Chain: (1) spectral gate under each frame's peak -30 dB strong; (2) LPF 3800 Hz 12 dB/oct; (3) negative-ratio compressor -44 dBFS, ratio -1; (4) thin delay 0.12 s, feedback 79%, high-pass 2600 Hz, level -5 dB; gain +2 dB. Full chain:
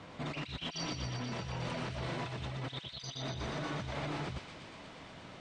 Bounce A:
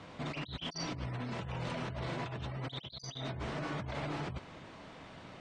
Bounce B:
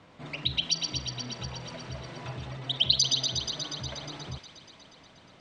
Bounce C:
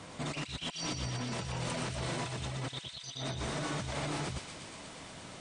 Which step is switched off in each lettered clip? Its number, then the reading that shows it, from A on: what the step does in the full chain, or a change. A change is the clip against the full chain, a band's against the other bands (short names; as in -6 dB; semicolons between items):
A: 4, echo-to-direct -8.0 dB to none; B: 3, crest factor change +9.5 dB; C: 2, 8 kHz band +6.5 dB